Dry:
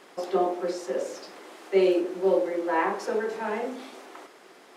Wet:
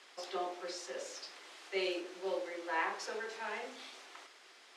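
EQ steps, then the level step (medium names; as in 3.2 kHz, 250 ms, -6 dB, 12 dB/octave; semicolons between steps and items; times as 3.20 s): band-pass 180–4400 Hz; differentiator; bass shelf 250 Hz +7.5 dB; +7.0 dB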